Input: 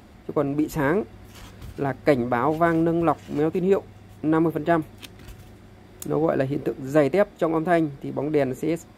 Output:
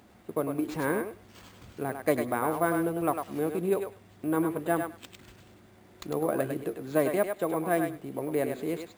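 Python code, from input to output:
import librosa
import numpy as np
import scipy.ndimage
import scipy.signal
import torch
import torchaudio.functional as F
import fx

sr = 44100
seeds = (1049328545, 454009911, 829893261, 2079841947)

p1 = fx.highpass(x, sr, hz=150.0, slope=6)
p2 = p1 + fx.echo_thinned(p1, sr, ms=101, feedback_pct=16, hz=520.0, wet_db=-4.5, dry=0)
p3 = np.repeat(p2[::4], 4)[:len(p2)]
y = p3 * 10.0 ** (-6.5 / 20.0)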